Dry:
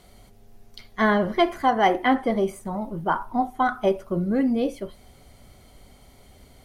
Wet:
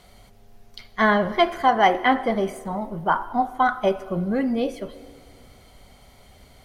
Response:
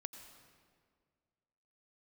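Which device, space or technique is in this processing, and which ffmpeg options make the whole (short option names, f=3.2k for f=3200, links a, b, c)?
filtered reverb send: -filter_complex "[0:a]asplit=2[a][b];[b]highpass=f=300:w=0.5412,highpass=f=300:w=1.3066,lowpass=6.8k[c];[1:a]atrim=start_sample=2205[d];[c][d]afir=irnorm=-1:irlink=0,volume=-2.5dB[e];[a][e]amix=inputs=2:normalize=0"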